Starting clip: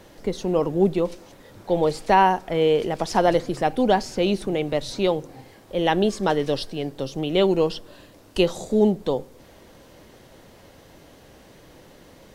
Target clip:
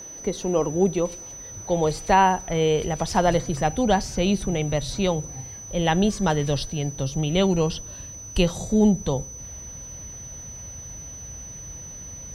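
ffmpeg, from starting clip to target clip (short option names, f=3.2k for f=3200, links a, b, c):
-af "aeval=exprs='val(0)+0.0141*sin(2*PI*6000*n/s)':c=same,highpass=44,asubboost=boost=9:cutoff=110"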